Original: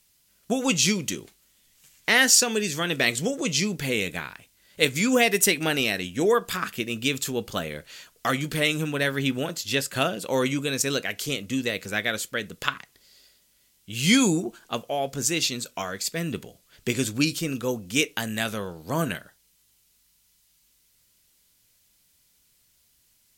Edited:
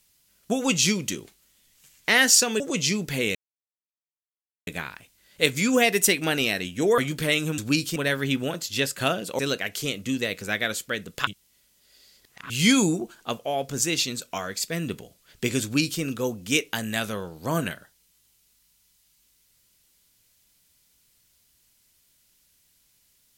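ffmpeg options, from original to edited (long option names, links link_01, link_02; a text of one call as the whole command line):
ffmpeg -i in.wav -filter_complex "[0:a]asplit=9[link_01][link_02][link_03][link_04][link_05][link_06][link_07][link_08][link_09];[link_01]atrim=end=2.602[link_10];[link_02]atrim=start=3.308:end=4.06,asetpts=PTS-STARTPTS,afade=type=out:start_time=0.748:duration=0.004:curve=hsin,apad=pad_dur=1.32[link_11];[link_03]atrim=start=4.06:end=6.372,asetpts=PTS-STARTPTS,afade=type=in:duration=0.004:curve=hsin[link_12];[link_04]atrim=start=8.308:end=8.912[link_13];[link_05]atrim=start=17.068:end=17.452[link_14];[link_06]atrim=start=8.908:end=10.342[link_15];[link_07]atrim=start=10.828:end=12.712[link_16];[link_08]atrim=start=12.708:end=13.942,asetpts=PTS-STARTPTS,areverse[link_17];[link_09]atrim=start=13.938[link_18];[link_11][link_12]concat=n=2:v=0:a=1[link_19];[link_10][link_19]acrossfade=duration=0.004:curve1=hsin:curve2=hsin[link_20];[link_20][link_13]acrossfade=duration=0.004:curve1=hsin:curve2=hsin[link_21];[link_21][link_14]acrossfade=duration=0.004:curve1=hsin:curve2=hsin[link_22];[link_22][link_15]acrossfade=duration=0.004:curve1=hsin:curve2=hsin[link_23];[link_23][link_16]acrossfade=duration=0.004:curve1=hsin:curve2=hsin[link_24];[link_24][link_17]acrossfade=duration=0.004:curve1=hsin:curve2=hsin[link_25];[link_25][link_18]acrossfade=duration=0.004:curve1=hsin:curve2=hsin" out.wav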